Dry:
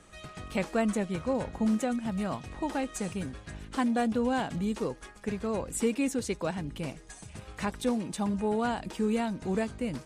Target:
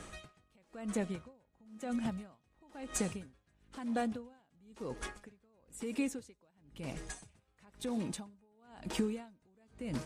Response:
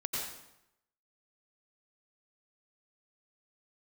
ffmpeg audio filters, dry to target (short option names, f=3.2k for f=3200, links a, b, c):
-filter_complex "[0:a]acompressor=threshold=-37dB:ratio=10,asplit=2[a][b];[1:a]atrim=start_sample=2205[c];[b][c]afir=irnorm=-1:irlink=0,volume=-25dB[d];[a][d]amix=inputs=2:normalize=0,aeval=exprs='val(0)*pow(10,-37*(0.5-0.5*cos(2*PI*1*n/s))/20)':c=same,volume=7dB"